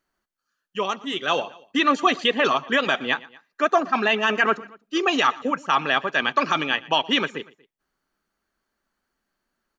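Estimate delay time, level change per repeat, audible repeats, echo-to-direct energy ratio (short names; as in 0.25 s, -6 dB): 0.118 s, -5.0 dB, 2, -20.5 dB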